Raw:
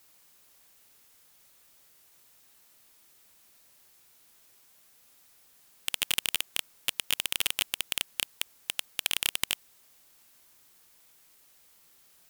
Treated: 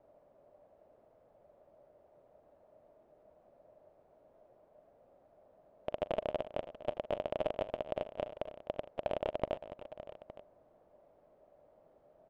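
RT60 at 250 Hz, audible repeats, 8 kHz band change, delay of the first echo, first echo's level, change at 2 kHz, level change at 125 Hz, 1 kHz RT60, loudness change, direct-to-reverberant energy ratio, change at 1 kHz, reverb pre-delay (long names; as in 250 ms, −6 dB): no reverb audible, 4, below −40 dB, 41 ms, −19.5 dB, −17.5 dB, +5.0 dB, no reverb audible, −9.5 dB, no reverb audible, +4.5 dB, no reverb audible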